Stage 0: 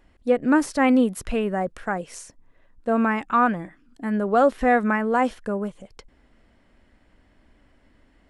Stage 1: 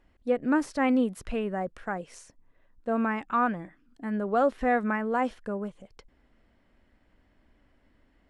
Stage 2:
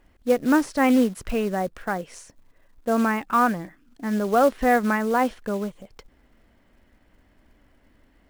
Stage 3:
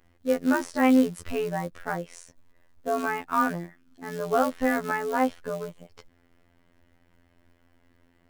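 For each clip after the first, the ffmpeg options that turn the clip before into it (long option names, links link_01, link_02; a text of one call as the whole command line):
ffmpeg -i in.wav -af "highshelf=frequency=8100:gain=-9,volume=-6dB" out.wav
ffmpeg -i in.wav -af "acrusher=bits=5:mode=log:mix=0:aa=0.000001,volume=5.5dB" out.wav
ffmpeg -i in.wav -af "afftfilt=real='hypot(re,im)*cos(PI*b)':imag='0':win_size=2048:overlap=0.75" out.wav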